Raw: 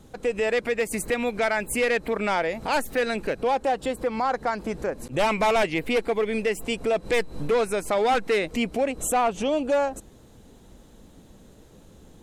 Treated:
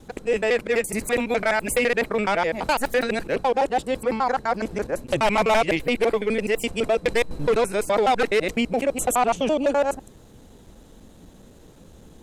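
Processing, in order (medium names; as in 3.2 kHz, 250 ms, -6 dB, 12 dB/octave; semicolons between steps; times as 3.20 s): time reversed locally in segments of 84 ms; trim +2.5 dB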